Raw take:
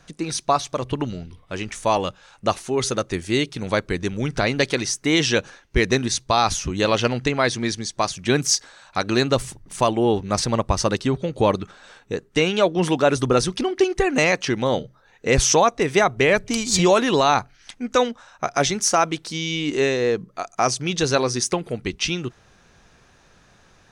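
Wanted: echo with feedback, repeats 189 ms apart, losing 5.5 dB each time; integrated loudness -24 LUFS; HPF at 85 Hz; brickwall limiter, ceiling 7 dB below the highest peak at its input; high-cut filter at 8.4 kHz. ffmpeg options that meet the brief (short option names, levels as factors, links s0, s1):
-af "highpass=85,lowpass=8400,alimiter=limit=0.266:level=0:latency=1,aecho=1:1:189|378|567|756|945|1134|1323:0.531|0.281|0.149|0.079|0.0419|0.0222|0.0118,volume=0.891"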